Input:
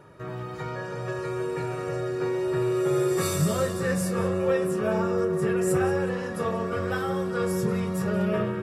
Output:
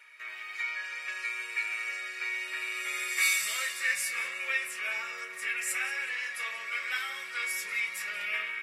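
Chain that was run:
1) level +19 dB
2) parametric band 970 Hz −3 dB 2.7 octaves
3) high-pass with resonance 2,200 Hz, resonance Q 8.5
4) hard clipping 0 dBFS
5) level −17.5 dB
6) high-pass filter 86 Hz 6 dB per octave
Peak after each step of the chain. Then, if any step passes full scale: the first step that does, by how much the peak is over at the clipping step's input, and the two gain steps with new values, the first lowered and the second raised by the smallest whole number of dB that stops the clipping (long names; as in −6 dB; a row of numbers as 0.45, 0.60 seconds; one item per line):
+6.0, +5.0, +3.5, 0.0, −17.5, −17.5 dBFS
step 1, 3.5 dB
step 1 +15 dB, step 5 −13.5 dB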